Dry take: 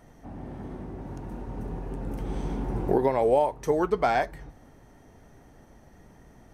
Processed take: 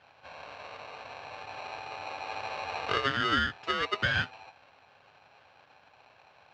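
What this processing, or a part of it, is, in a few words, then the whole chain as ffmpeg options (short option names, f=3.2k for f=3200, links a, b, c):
ring modulator pedal into a guitar cabinet: -af "aeval=exprs='val(0)*sgn(sin(2*PI*820*n/s))':c=same,highpass=91,equalizer=f=98:t=q:w=4:g=5,equalizer=f=210:t=q:w=4:g=-6,equalizer=f=350:t=q:w=4:g=-6,equalizer=f=960:t=q:w=4:g=-4,equalizer=f=1.6k:t=q:w=4:g=5,equalizer=f=3k:t=q:w=4:g=4,lowpass=f=4.5k:w=0.5412,lowpass=f=4.5k:w=1.3066,volume=-6dB"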